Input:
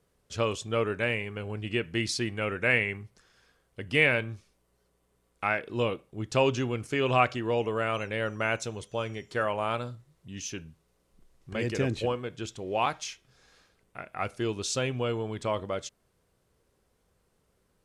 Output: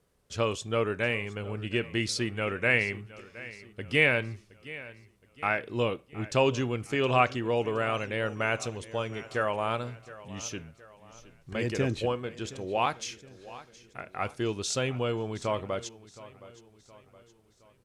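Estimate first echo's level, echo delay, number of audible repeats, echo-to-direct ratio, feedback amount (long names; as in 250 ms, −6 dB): −18.0 dB, 718 ms, 3, −17.0 dB, 46%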